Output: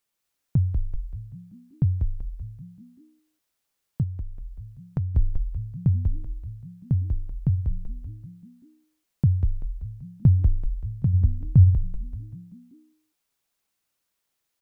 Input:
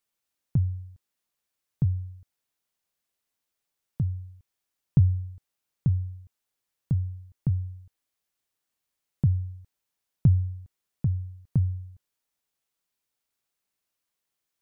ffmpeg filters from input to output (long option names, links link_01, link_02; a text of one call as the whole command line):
ffmpeg -i in.wav -filter_complex "[0:a]asplit=7[link_01][link_02][link_03][link_04][link_05][link_06][link_07];[link_02]adelay=192,afreqshift=-67,volume=-3dB[link_08];[link_03]adelay=384,afreqshift=-134,volume=-9.2dB[link_09];[link_04]adelay=576,afreqshift=-201,volume=-15.4dB[link_10];[link_05]adelay=768,afreqshift=-268,volume=-21.6dB[link_11];[link_06]adelay=960,afreqshift=-335,volume=-27.8dB[link_12];[link_07]adelay=1152,afreqshift=-402,volume=-34dB[link_13];[link_01][link_08][link_09][link_10][link_11][link_12][link_13]amix=inputs=7:normalize=0,asettb=1/sr,asplit=3[link_14][link_15][link_16];[link_14]atrim=end=4.034[link_17];[link_15]atrim=start=4.03:end=5.15,asetpts=PTS-STARTPTS,afade=type=in:duration=0.004:curve=qsin,afade=type=out:start_time=1.116:duration=0.004:curve=qsin,acompressor=threshold=-35dB:ratio=2[link_18];[link_16]atrim=start=5.146[link_19];[link_17][link_18]acrossfade=duration=0.004:curve1=hsin:curve2=qsin[link_20];[link_20][link_19]acrossfade=duration=0.004:curve1=qsin:curve2=hsin,asettb=1/sr,asplit=3[link_21][link_22][link_23];[link_21]atrim=end=11.134[link_24];[link_22]atrim=start=11.13:end=11.75,asetpts=PTS-STARTPTS,afade=type=in:duration=0.004:curve=qsin,afade=type=out:start_time=0.616:duration=0.004:curve=qsin,equalizer=frequency=88:width_type=o:width=1.2:gain=9[link_25];[link_23]atrim=start=11.746[link_26];[link_24][link_25]acrossfade=duration=0.004:curve1=hsin:curve2=qsin[link_27];[link_27][link_26]acrossfade=duration=0.004:curve1=qsin:curve2=hsin,volume=2.5dB" out.wav